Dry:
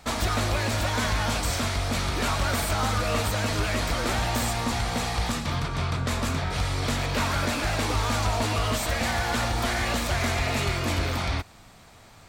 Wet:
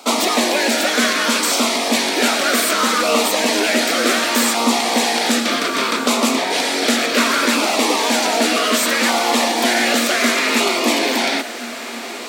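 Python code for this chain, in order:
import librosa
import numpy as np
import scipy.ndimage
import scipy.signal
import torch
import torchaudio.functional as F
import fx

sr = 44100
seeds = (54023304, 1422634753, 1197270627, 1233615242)

p1 = scipy.signal.sosfilt(scipy.signal.cheby1(5, 1.0, 230.0, 'highpass', fs=sr, output='sos'), x)
p2 = fx.rider(p1, sr, range_db=10, speed_s=0.5)
p3 = p1 + F.gain(torch.from_numpy(p2), 0.0).numpy()
p4 = fx.filter_lfo_notch(p3, sr, shape='saw_down', hz=0.66, low_hz=670.0, high_hz=1800.0, q=2.2)
p5 = fx.echo_diffused(p4, sr, ms=1494, feedback_pct=58, wet_db=-14.0)
y = F.gain(torch.from_numpy(p5), 7.0).numpy()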